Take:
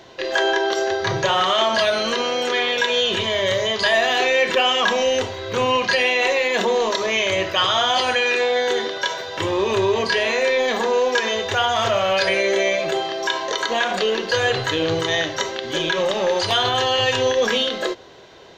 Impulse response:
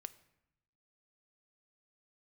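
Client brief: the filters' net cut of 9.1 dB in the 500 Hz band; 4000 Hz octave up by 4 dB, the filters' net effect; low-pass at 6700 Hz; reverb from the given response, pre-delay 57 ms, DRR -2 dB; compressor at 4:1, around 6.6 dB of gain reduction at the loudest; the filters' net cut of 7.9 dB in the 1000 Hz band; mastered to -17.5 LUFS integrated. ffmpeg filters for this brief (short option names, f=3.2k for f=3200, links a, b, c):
-filter_complex "[0:a]lowpass=6.7k,equalizer=f=500:t=o:g=-9,equalizer=f=1k:t=o:g=-7.5,equalizer=f=4k:t=o:g=6.5,acompressor=threshold=-23dB:ratio=4,asplit=2[a][b];[1:a]atrim=start_sample=2205,adelay=57[c];[b][c]afir=irnorm=-1:irlink=0,volume=6.5dB[d];[a][d]amix=inputs=2:normalize=0,volume=3dB"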